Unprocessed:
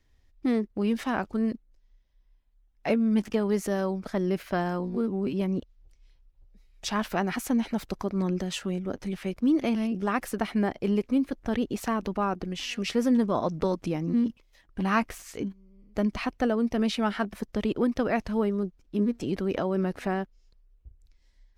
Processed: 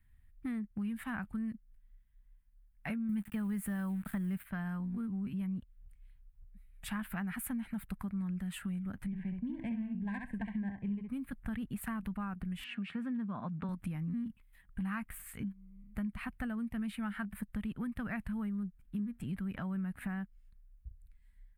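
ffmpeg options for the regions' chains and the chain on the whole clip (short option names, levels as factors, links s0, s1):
-filter_complex "[0:a]asettb=1/sr,asplit=3[s0][s1][s2];[s0]atrim=end=3.094[s3];[s1]atrim=start=3.09:end=4.45,asetpts=PTS-STARTPTS,afade=t=in:d=0.004:c=qsin,afade=t=out:st=1.356:d=0.004:c=qsin,acontrast=54,aeval=exprs='val(0)*gte(abs(val(0)),0.0126)':c=same[s4];[s2]atrim=start=4.446[s5];[s3][s4]acrossfade=d=0.004:c1=hsin:c2=qsin[s6];[s6][s5]acrossfade=d=0.004:c1=qsin:c2=hsin,asettb=1/sr,asplit=3[s7][s8][s9];[s7]atrim=end=9.064[s10];[s8]atrim=start=9.06:end=11.09,asetpts=PTS-STARTPTS,afade=t=in:d=0.004:c=qsin,afade=t=out:st=2.026:d=0.004:c=qsin,aecho=1:1:65|130|195:0.562|0.0844|0.0127,atrim=end_sample=89523,adynamicsmooth=sensitivity=1.5:basefreq=1500,asuperstop=centerf=1300:order=20:qfactor=2.9[s11];[s9]atrim=start=11.086[s12];[s10][s11]acrossfade=d=0.004:c1=hsin:c2=qsin[s13];[s13][s12]acrossfade=d=0.004:c1=qsin:c2=hsin,asettb=1/sr,asplit=3[s14][s15][s16];[s14]atrim=end=12.644[s17];[s15]atrim=start=12.64:end=13.69,asetpts=PTS-STARTPTS,afade=t=in:d=0.004:c=qsin,afade=t=out:st=1.046:d=0.004:c=qsin,highpass=150,lowpass=3200,bandreject=f=2000:w=11[s18];[s16]atrim=start=13.686[s19];[s17][s18]acrossfade=d=0.004:c1=hsin:c2=qsin[s20];[s20][s19]acrossfade=d=0.004:c1=qsin:c2=hsin,firequalizer=gain_entry='entry(200,0);entry(340,-21);entry(500,-22);entry(750,-13);entry(1600,-2);entry(5800,-27);entry(8500,-1);entry(12000,2)':delay=0.05:min_phase=1,acompressor=threshold=0.0141:ratio=4,volume=1.12"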